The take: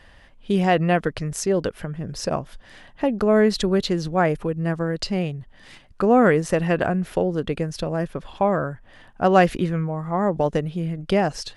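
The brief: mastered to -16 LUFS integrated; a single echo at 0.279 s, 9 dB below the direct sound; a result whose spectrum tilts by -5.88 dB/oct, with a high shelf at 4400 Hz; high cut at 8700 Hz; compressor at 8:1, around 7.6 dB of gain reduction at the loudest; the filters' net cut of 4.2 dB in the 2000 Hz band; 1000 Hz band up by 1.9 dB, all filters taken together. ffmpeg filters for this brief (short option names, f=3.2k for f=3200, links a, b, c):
-af "lowpass=8.7k,equalizer=f=1k:t=o:g=4.5,equalizer=f=2k:t=o:g=-6.5,highshelf=f=4.4k:g=-6,acompressor=threshold=-18dB:ratio=8,aecho=1:1:279:0.355,volume=9dB"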